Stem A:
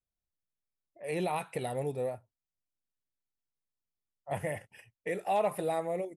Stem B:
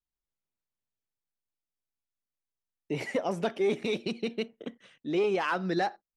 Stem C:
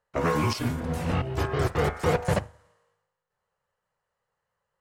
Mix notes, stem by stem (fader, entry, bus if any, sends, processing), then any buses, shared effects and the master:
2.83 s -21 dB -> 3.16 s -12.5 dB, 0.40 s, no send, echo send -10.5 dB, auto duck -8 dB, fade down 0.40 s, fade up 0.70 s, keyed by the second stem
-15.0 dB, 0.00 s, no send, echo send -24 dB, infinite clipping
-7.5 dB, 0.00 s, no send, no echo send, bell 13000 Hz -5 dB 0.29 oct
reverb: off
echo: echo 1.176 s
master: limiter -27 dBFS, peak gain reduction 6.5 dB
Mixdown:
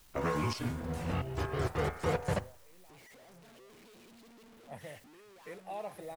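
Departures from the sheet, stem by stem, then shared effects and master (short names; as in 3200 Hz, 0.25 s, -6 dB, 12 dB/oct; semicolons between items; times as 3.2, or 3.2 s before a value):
stem B -15.0 dB -> -23.5 dB; master: missing limiter -27 dBFS, peak gain reduction 6.5 dB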